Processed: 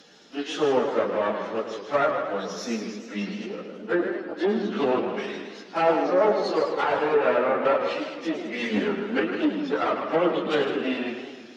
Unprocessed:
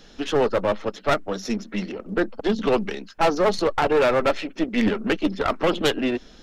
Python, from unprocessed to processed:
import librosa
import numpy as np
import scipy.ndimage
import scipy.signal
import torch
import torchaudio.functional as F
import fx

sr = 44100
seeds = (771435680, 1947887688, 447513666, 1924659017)

y = scipy.signal.sosfilt(scipy.signal.butter(2, 220.0, 'highpass', fs=sr, output='sos'), x)
y = fx.stretch_vocoder_free(y, sr, factor=1.8)
y = fx.env_lowpass_down(y, sr, base_hz=1900.0, full_db=-19.0)
y = y + 10.0 ** (-9.0 / 20.0) * np.pad(y, (int(155 * sr / 1000.0), 0))[:len(y)]
y = fx.echo_warbled(y, sr, ms=107, feedback_pct=65, rate_hz=2.8, cents=190, wet_db=-9)